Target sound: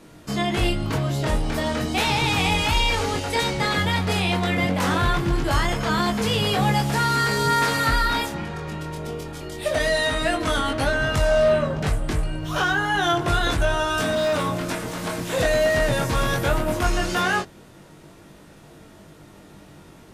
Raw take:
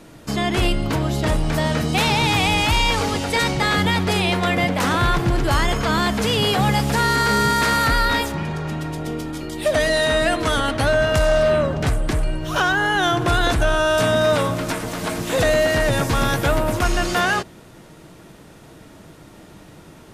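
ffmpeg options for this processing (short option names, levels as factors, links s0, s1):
-filter_complex "[0:a]flanger=delay=20:depth=3.9:speed=0.16,asettb=1/sr,asplit=3[s0][s1][s2];[s0]atrim=end=14.014[s3];[s1]atrim=start=14.01:end=14.46,asetpts=PTS-STARTPTS,afade=t=in:d=0.004:c=qsin,afade=t=out:st=0.446:d=0.004:c=qsin,volume=8.91,asoftclip=hard,volume=0.112[s4];[s2]atrim=start=14.456[s5];[s3][s4]acrossfade=d=0.004:c1=hsin:c2=qsin[s6];[s6][s5]acrossfade=d=0.004:c1=qsin:c2=hsin"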